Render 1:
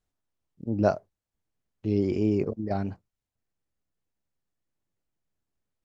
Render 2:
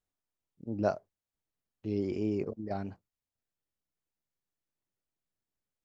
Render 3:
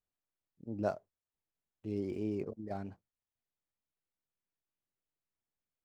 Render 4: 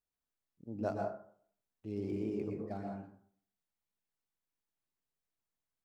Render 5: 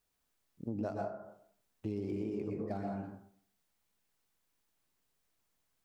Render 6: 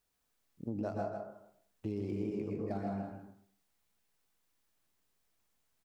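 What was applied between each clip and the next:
low shelf 180 Hz -5 dB; gain -5.5 dB
median filter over 9 samples; gain -4.5 dB
plate-style reverb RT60 0.56 s, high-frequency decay 0.45×, pre-delay 0.105 s, DRR 0.5 dB; gain -3 dB
compressor 10:1, threshold -45 dBFS, peak gain reduction 15.5 dB; gain +11 dB
echo 0.157 s -7.5 dB

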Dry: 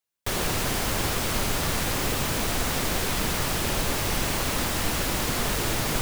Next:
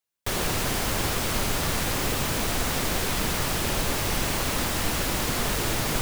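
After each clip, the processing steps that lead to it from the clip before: nothing audible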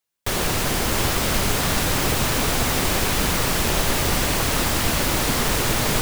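split-band echo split 580 Hz, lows 0.405 s, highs 0.66 s, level -6 dB; gain +4 dB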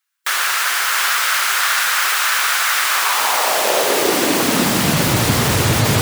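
high-pass sweep 1400 Hz -> 100 Hz, 2.85–5.28; spectral gate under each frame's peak -30 dB strong; gain +5 dB

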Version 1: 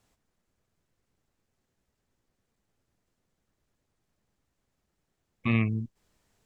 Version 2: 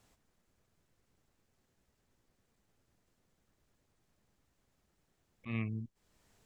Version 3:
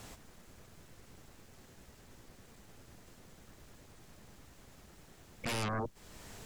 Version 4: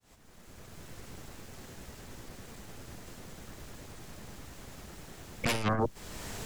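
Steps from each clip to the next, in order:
auto swell 0.141 s; compressor 1.5:1, threshold -56 dBFS, peak gain reduction 12.5 dB; gain +2 dB
limiter -29.5 dBFS, peak gain reduction 6 dB; sine folder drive 18 dB, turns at -29.5 dBFS; gain -2.5 dB
opening faded in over 0.93 s; core saturation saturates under 46 Hz; gain +10 dB

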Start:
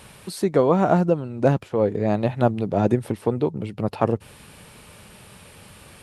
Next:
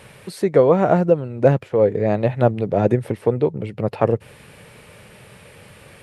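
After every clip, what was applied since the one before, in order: graphic EQ 125/500/2000 Hz +7/+9/+8 dB; gain -3.5 dB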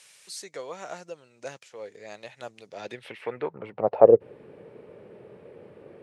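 band-pass sweep 6400 Hz -> 380 Hz, 2.66–4.24; gain +6 dB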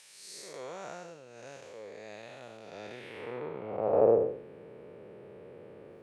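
time blur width 0.25 s

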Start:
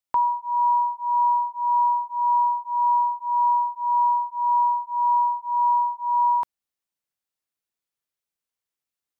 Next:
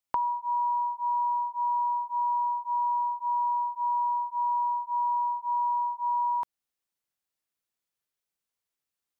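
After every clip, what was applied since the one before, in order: compressor, threshold -26 dBFS, peak gain reduction 8 dB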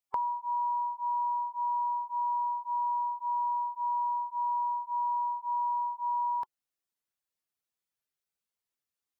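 bin magnitudes rounded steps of 15 dB; gain -3 dB

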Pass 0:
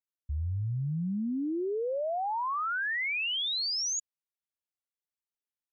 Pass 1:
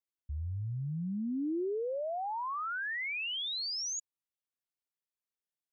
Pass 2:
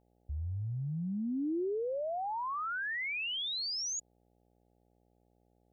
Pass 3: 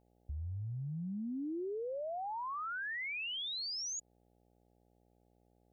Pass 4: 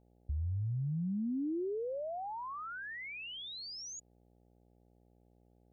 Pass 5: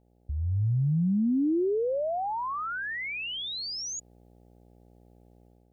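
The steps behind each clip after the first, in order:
bell 330 Hz +3.5 dB 1.1 oct; gain -5 dB
buzz 60 Hz, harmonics 14, -71 dBFS -3 dB/oct
compressor 2.5:1, threshold -40 dBFS, peak gain reduction 5.5 dB
tilt shelf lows +5.5 dB, about 690 Hz
AGC gain up to 8 dB; gain +2 dB

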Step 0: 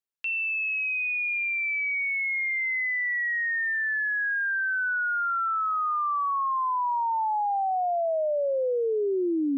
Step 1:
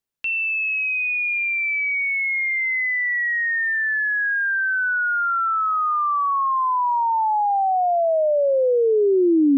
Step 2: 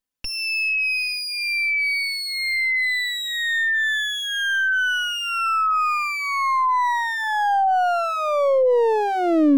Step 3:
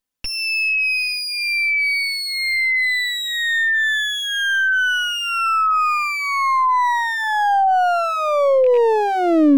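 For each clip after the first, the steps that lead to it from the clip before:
low shelf 370 Hz +8 dB; gain +5 dB
minimum comb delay 3.9 ms; gain +1.5 dB
rattling part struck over -36 dBFS, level -28 dBFS; gain +3 dB

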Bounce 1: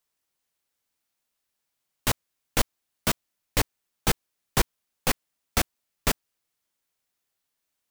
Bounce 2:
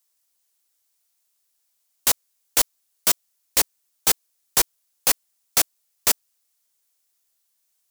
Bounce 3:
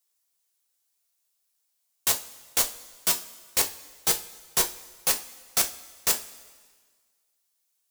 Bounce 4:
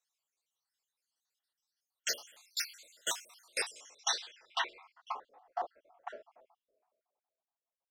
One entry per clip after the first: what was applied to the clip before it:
tone controls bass -15 dB, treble +11 dB
two-slope reverb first 0.27 s, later 1.6 s, from -18 dB, DRR 3 dB; gain -5.5 dB
random spectral dropouts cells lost 64%; three-band isolator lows -23 dB, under 400 Hz, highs -22 dB, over 7000 Hz; low-pass sweep 15000 Hz -> 740 Hz, 3.33–5.42; gain -1.5 dB

